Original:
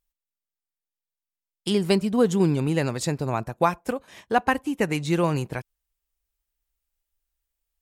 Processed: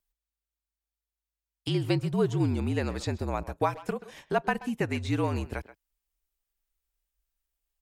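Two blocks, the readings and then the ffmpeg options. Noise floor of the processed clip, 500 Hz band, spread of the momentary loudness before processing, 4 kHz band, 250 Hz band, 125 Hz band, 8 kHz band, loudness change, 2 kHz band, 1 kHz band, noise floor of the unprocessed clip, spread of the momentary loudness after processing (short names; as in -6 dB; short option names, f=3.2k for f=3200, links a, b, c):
under -85 dBFS, -6.0 dB, 11 LU, -6.0 dB, -6.0 dB, -2.5 dB, -11.0 dB, -5.5 dB, -5.5 dB, -6.5 dB, under -85 dBFS, 10 LU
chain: -filter_complex "[0:a]asplit=2[a][b];[b]adelay=130,highpass=300,lowpass=3.4k,asoftclip=type=hard:threshold=-16.5dB,volume=-16dB[c];[a][c]amix=inputs=2:normalize=0,acrossover=split=5400[d][e];[e]acompressor=threshold=-47dB:ratio=4:attack=1:release=60[f];[d][f]amix=inputs=2:normalize=0,afreqshift=-52,asplit=2[g][h];[h]acompressor=threshold=-28dB:ratio=6,volume=-1.5dB[i];[g][i]amix=inputs=2:normalize=0,volume=-7.5dB"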